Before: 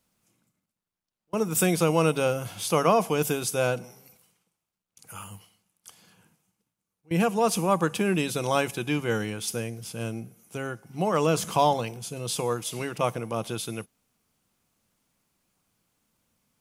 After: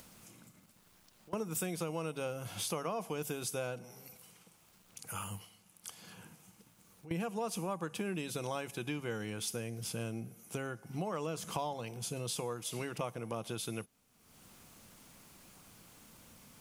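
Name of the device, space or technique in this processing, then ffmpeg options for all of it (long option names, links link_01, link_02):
upward and downward compression: -af "acompressor=mode=upward:threshold=-45dB:ratio=2.5,acompressor=threshold=-37dB:ratio=5,volume=1dB"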